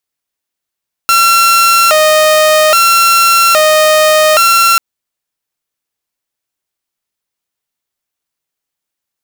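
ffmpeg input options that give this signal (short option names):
-f lavfi -i "aevalsrc='0.708*(2*mod((989.5*t+370.5/0.61*(0.5-abs(mod(0.61*t,1)-0.5))),1)-1)':d=3.69:s=44100"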